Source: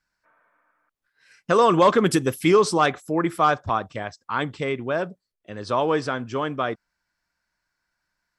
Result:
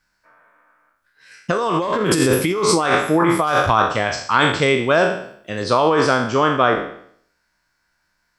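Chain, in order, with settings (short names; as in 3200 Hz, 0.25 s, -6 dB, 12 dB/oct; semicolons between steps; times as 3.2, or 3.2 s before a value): spectral trails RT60 0.63 s; 3.47–5.64 high shelf 3000 Hz +9 dB; negative-ratio compressor -21 dBFS, ratio -1; gain +5 dB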